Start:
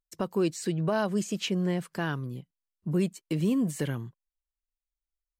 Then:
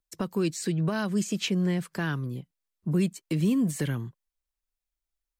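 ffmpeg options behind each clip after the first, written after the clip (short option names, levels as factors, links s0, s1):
-filter_complex "[0:a]bandreject=f=2900:w=25,acrossover=split=340|1200|2100[s0][s1][s2][s3];[s1]acompressor=threshold=0.00891:ratio=6[s4];[s0][s4][s2][s3]amix=inputs=4:normalize=0,volume=1.41"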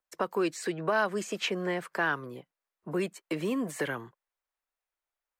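-filter_complex "[0:a]acrossover=split=410 2200:gain=0.0631 1 0.224[s0][s1][s2];[s0][s1][s2]amix=inputs=3:normalize=0,volume=2.37"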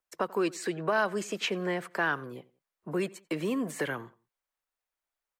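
-filter_complex "[0:a]asplit=2[s0][s1];[s1]adelay=89,lowpass=f=3300:p=1,volume=0.0841,asplit=2[s2][s3];[s3]adelay=89,lowpass=f=3300:p=1,volume=0.34[s4];[s0][s2][s4]amix=inputs=3:normalize=0"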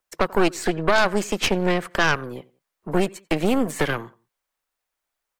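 -af "aeval=exprs='0.178*(cos(1*acos(clip(val(0)/0.178,-1,1)))-cos(1*PI/2))+0.0447*(cos(6*acos(clip(val(0)/0.178,-1,1)))-cos(6*PI/2))+0.00708*(cos(8*acos(clip(val(0)/0.178,-1,1)))-cos(8*PI/2))':c=same,volume=2.37"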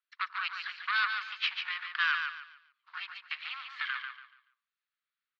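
-af "acrusher=bits=6:mode=log:mix=0:aa=0.000001,asuperpass=centerf=2300:order=12:qfactor=0.69,aecho=1:1:143|286|429|572:0.501|0.145|0.0421|0.0122,volume=0.473"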